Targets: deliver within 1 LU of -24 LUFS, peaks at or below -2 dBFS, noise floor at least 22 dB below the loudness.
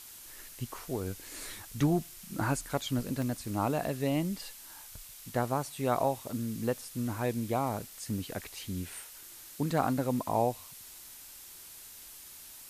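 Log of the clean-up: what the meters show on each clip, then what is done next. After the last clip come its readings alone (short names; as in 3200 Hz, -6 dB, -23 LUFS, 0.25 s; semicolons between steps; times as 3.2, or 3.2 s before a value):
dropouts 1; longest dropout 1.1 ms; noise floor -50 dBFS; noise floor target -56 dBFS; loudness -33.5 LUFS; peak -15.0 dBFS; loudness target -24.0 LUFS
-> interpolate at 3.22, 1.1 ms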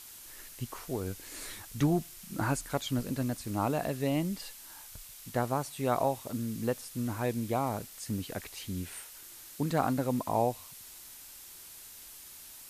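dropouts 0; noise floor -50 dBFS; noise floor target -56 dBFS
-> denoiser 6 dB, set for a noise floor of -50 dBFS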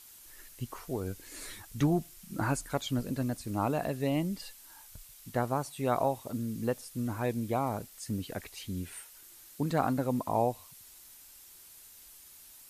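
noise floor -54 dBFS; noise floor target -56 dBFS
-> denoiser 6 dB, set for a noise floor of -54 dBFS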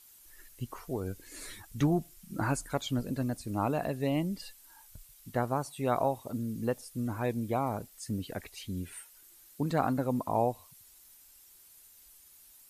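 noise floor -58 dBFS; loudness -33.5 LUFS; peak -15.0 dBFS; loudness target -24.0 LUFS
-> gain +9.5 dB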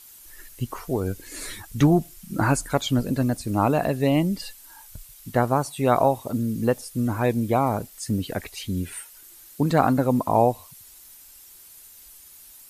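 loudness -24.0 LUFS; peak -5.5 dBFS; noise floor -48 dBFS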